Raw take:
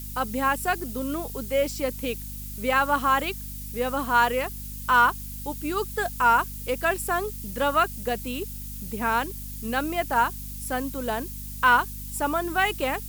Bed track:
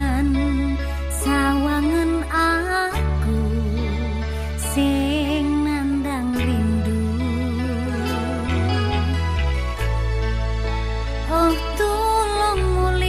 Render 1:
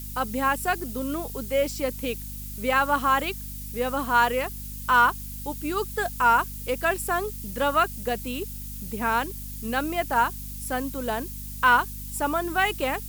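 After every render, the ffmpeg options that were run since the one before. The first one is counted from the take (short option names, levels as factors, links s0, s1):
-af anull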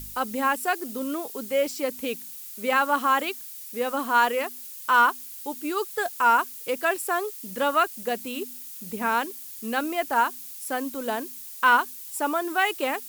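-af "bandreject=f=50:t=h:w=4,bandreject=f=100:t=h:w=4,bandreject=f=150:t=h:w=4,bandreject=f=200:t=h:w=4,bandreject=f=250:t=h:w=4"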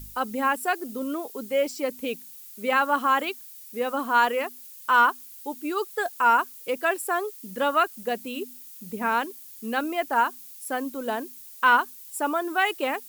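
-af "afftdn=nr=6:nf=-40"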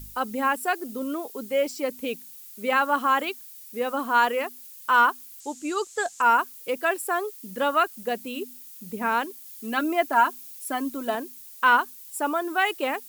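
-filter_complex "[0:a]asettb=1/sr,asplit=3[s0][s1][s2];[s0]atrim=end=5.404[s3];[s1]atrim=start=5.4:end=6.22,asetpts=PTS-STARTPTS,afade=t=in:d=0.004:c=qsin,afade=t=out:st=0.816:d=0.004:c=qsin,lowpass=f=7200:t=q:w=4.8[s4];[s2]atrim=start=6.216[s5];[s3][s4]acrossfade=d=0.004:c1=hsin:c2=qsin[s6];[s6][s5]acrossfade=d=0.004:c1=qsin:c2=hsin,asettb=1/sr,asplit=3[s7][s8][s9];[s7]atrim=end=9.454[s10];[s8]atrim=start=9.45:end=11.15,asetpts=PTS-STARTPTS,afade=t=in:d=0.004:c=qsin,afade=t=out:st=1.696:d=0.004:c=qsin,aecho=1:1:3:0.65,atrim=end_sample=74970[s11];[s9]atrim=start=11.146[s12];[s10][s11]acrossfade=d=0.004:c1=hsin:c2=qsin[s13];[s13][s12]acrossfade=d=0.004:c1=qsin:c2=hsin"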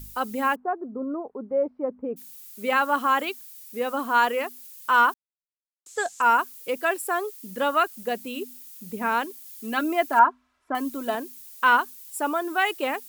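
-filter_complex "[0:a]asplit=3[s0][s1][s2];[s0]afade=t=out:st=0.54:d=0.02[s3];[s1]lowpass=f=1100:w=0.5412,lowpass=f=1100:w=1.3066,afade=t=in:st=0.54:d=0.02,afade=t=out:st=2.16:d=0.02[s4];[s2]afade=t=in:st=2.16:d=0.02[s5];[s3][s4][s5]amix=inputs=3:normalize=0,asettb=1/sr,asplit=3[s6][s7][s8];[s6]atrim=end=10.194[s9];[s7]atrim=start=10.19:end=10.75,asetpts=PTS-STARTPTS,afade=t=in:d=0.004:c=qsin,afade=t=out:st=0.556:d=0.004:c=qsin,lowpass=f=1200:t=q:w=1.7[s10];[s8]atrim=start=10.746[s11];[s9][s10]acrossfade=d=0.004:c1=hsin:c2=qsin[s12];[s12][s11]acrossfade=d=0.004:c1=qsin:c2=hsin,asplit=3[s13][s14][s15];[s13]atrim=end=5.14,asetpts=PTS-STARTPTS,afade=t=out:st=5.136:d=0.004:c=hsin[s16];[s14]atrim=start=5.14:end=5.86,asetpts=PTS-STARTPTS,volume=0[s17];[s15]atrim=start=5.86,asetpts=PTS-STARTPTS,afade=t=in:d=0.004:c=hsin[s18];[s16][s17][s18]concat=n=3:v=0:a=1"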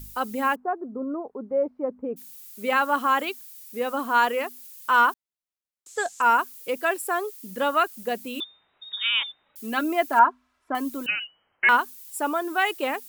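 -filter_complex "[0:a]asettb=1/sr,asplit=3[s0][s1][s2];[s0]atrim=end=8.404[s3];[s1]atrim=start=8.4:end=9.56,asetpts=PTS-STARTPTS,afade=t=in:d=0.004:c=qsin,afade=t=out:st=1.156:d=0.004:c=qsin,lowpass=f=3300:t=q:w=0.5098,lowpass=f=3300:t=q:w=0.6013,lowpass=f=3300:t=q:w=0.9,lowpass=f=3300:t=q:w=2.563,afreqshift=-3900[s4];[s2]atrim=start=9.556[s5];[s3][s4]acrossfade=d=0.004:c1=hsin:c2=qsin[s6];[s6][s5]acrossfade=d=0.004:c1=qsin:c2=hsin,asettb=1/sr,asplit=3[s7][s8][s9];[s7]atrim=end=11.064[s10];[s8]atrim=start=11.06:end=11.69,asetpts=PTS-STARTPTS,afade=t=in:d=0.004:c=qsin,afade=t=out:st=0.626:d=0.004:c=qsin,lowpass=f=2700:t=q:w=0.5098,lowpass=f=2700:t=q:w=0.6013,lowpass=f=2700:t=q:w=0.9,lowpass=f=2700:t=q:w=2.563,afreqshift=-3200[s11];[s9]atrim=start=11.686[s12];[s10][s11]acrossfade=d=0.004:c1=hsin:c2=qsin[s13];[s13][s12]acrossfade=d=0.004:c1=qsin:c2=hsin"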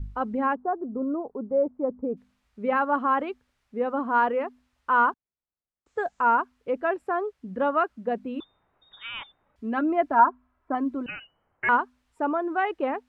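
-af "lowpass=1300,lowshelf=f=140:g=11.5"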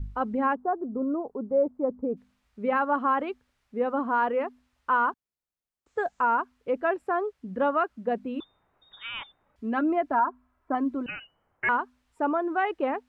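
-af "alimiter=limit=0.168:level=0:latency=1:release=153"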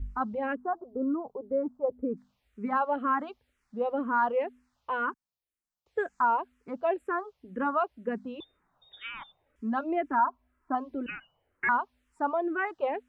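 -filter_complex "[0:a]asplit=2[s0][s1];[s1]afreqshift=-2[s2];[s0][s2]amix=inputs=2:normalize=1"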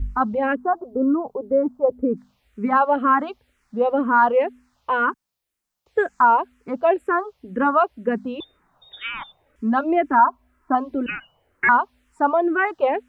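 -af "volume=3.16"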